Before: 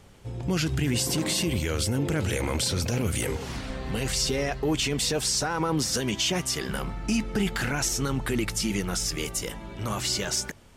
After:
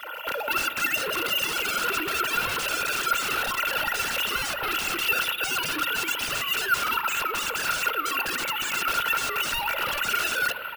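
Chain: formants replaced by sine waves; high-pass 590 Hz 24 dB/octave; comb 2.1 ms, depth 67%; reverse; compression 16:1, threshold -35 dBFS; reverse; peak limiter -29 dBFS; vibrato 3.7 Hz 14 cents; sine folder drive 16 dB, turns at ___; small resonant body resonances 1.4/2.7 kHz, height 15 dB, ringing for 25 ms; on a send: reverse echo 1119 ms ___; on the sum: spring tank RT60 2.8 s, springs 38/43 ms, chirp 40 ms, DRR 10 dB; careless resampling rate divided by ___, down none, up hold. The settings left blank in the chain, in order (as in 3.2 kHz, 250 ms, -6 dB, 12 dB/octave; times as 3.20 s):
-28.5 dBFS, -24 dB, 3×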